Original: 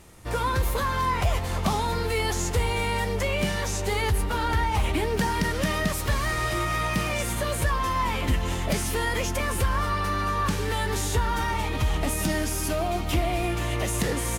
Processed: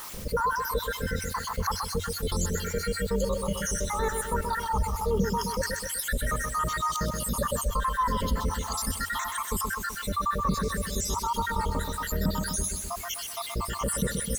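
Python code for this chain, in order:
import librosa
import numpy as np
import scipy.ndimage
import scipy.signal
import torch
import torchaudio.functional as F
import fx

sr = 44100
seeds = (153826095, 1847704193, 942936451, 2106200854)

p1 = fx.spec_dropout(x, sr, seeds[0], share_pct=79)
p2 = fx.peak_eq(p1, sr, hz=89.0, db=11.0, octaves=0.47)
p3 = fx.fixed_phaser(p2, sr, hz=490.0, stages=8)
p4 = fx.quant_dither(p3, sr, seeds[1], bits=10, dither='triangular')
p5 = p4 + fx.echo_feedback(p4, sr, ms=127, feedback_pct=43, wet_db=-9.0, dry=0)
y = fx.env_flatten(p5, sr, amount_pct=50)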